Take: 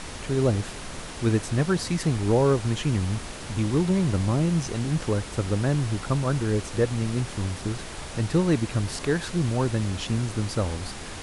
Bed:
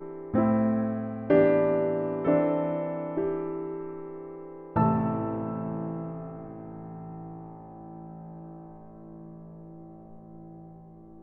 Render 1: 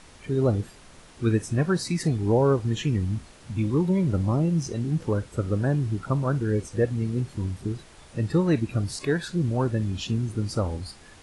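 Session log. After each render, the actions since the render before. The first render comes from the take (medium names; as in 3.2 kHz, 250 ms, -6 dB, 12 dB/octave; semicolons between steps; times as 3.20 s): noise print and reduce 13 dB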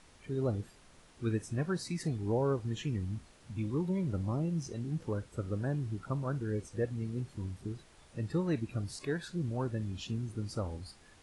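trim -10 dB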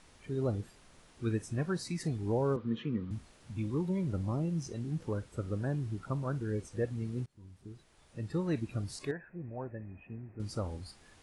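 2.56–3.11 s: cabinet simulation 150–3500 Hz, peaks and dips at 230 Hz +9 dB, 490 Hz +7 dB, 750 Hz -10 dB, 1.2 kHz +9 dB, 1.8 kHz -3 dB, 2.7 kHz -5 dB; 7.26–8.58 s: fade in, from -23.5 dB; 9.11–10.40 s: rippled Chebyshev low-pass 2.6 kHz, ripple 9 dB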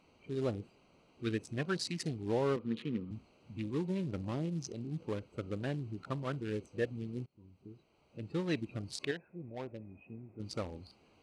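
local Wiener filter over 25 samples; frequency weighting D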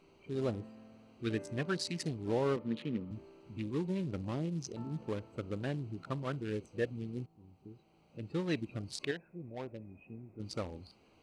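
add bed -28 dB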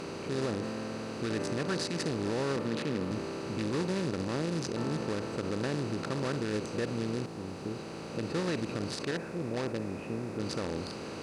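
spectral levelling over time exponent 0.4; peak limiter -22 dBFS, peak gain reduction 6 dB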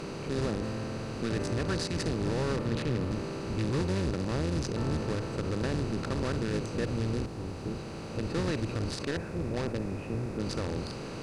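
octave divider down 1 oct, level +1 dB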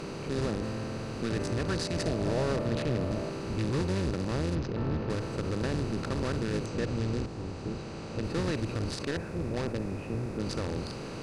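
1.87–3.30 s: peaking EQ 630 Hz +12 dB 0.27 oct; 4.55–5.10 s: distance through air 210 m; 6.66–8.24 s: low-pass 8.7 kHz 24 dB/octave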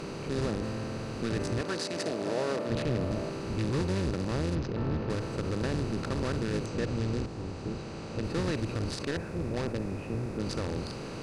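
1.61–2.70 s: high-pass 250 Hz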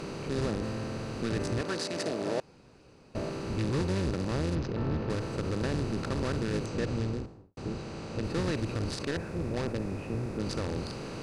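2.40–3.15 s: room tone; 6.94–7.57 s: studio fade out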